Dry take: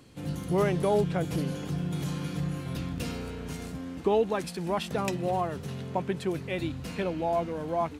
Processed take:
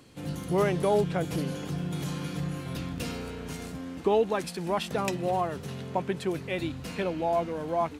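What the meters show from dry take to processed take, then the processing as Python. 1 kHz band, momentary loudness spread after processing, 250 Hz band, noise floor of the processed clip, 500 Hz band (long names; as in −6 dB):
+1.0 dB, 12 LU, −0.5 dB, −41 dBFS, +1.0 dB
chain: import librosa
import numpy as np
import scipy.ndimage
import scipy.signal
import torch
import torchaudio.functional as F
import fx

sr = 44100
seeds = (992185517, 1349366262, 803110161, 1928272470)

y = fx.low_shelf(x, sr, hz=200.0, db=-4.5)
y = y * librosa.db_to_amplitude(1.5)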